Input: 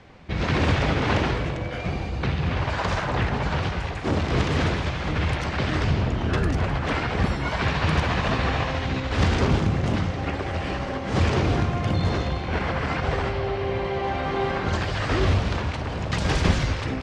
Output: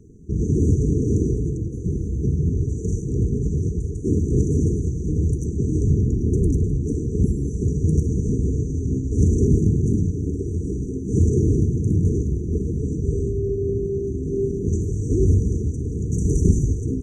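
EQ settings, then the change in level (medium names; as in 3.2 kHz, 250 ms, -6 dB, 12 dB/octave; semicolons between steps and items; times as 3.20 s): brick-wall FIR band-stop 470–5800 Hz; +4.5 dB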